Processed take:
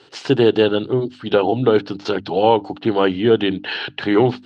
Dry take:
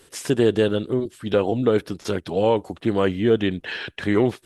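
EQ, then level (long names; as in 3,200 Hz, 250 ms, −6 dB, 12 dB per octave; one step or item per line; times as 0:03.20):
loudspeaker in its box 110–5,600 Hz, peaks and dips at 130 Hz +8 dB, 290 Hz +6 dB, 410 Hz +4 dB, 1,400 Hz +6 dB, 2,900 Hz +8 dB, 4,300 Hz +9 dB
parametric band 820 Hz +11 dB 0.51 octaves
mains-hum notches 50/100/150/200/250/300 Hz
0.0 dB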